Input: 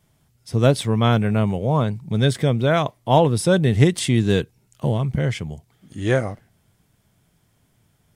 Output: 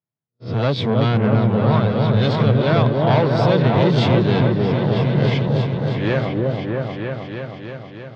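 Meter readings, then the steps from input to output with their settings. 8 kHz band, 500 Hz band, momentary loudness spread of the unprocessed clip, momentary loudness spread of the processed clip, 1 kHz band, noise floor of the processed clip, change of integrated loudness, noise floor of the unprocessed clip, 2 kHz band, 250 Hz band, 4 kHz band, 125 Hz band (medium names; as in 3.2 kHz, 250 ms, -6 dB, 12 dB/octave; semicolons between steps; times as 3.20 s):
under -15 dB, +3.0 dB, 10 LU, 12 LU, +2.5 dB, -44 dBFS, +2.0 dB, -64 dBFS, +2.0 dB, +3.0 dB, +1.5 dB, +3.5 dB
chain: reverse spectral sustain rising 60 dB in 0.34 s; level-controlled noise filter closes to 2.4 kHz, open at -16 dBFS; gate -43 dBFS, range -33 dB; in parallel at -2.5 dB: compression, threshold -24 dBFS, peak gain reduction 14.5 dB; on the sum: hard clipper -13.5 dBFS, distortion -10 dB; elliptic band-pass 110–4400 Hz, stop band 40 dB; on a send: delay with an opening low-pass 316 ms, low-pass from 750 Hz, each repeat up 1 oct, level 0 dB; on the sum: trim -1 dB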